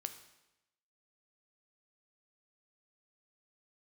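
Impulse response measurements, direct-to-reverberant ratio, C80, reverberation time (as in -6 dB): 8.0 dB, 13.0 dB, 0.95 s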